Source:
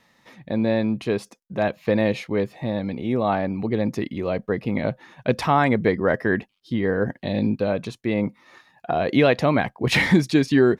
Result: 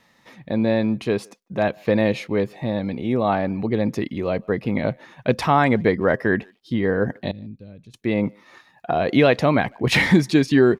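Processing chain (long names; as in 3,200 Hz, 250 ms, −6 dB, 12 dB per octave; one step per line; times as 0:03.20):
0:07.31–0:07.94: guitar amp tone stack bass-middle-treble 10-0-1
far-end echo of a speakerphone 150 ms, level −28 dB
level +1.5 dB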